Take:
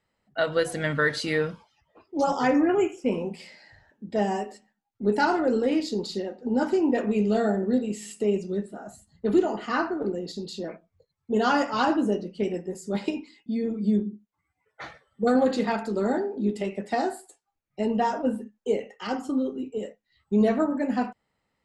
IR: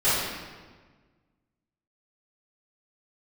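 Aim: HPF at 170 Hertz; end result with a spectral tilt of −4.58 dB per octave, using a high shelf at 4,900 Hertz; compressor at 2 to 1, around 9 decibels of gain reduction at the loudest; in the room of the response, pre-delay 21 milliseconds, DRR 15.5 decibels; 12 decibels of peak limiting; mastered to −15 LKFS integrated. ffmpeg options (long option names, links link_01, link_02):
-filter_complex "[0:a]highpass=170,highshelf=frequency=4900:gain=4,acompressor=threshold=-34dB:ratio=2,alimiter=level_in=5.5dB:limit=-24dB:level=0:latency=1,volume=-5.5dB,asplit=2[link_01][link_02];[1:a]atrim=start_sample=2205,adelay=21[link_03];[link_02][link_03]afir=irnorm=-1:irlink=0,volume=-32dB[link_04];[link_01][link_04]amix=inputs=2:normalize=0,volume=23.5dB"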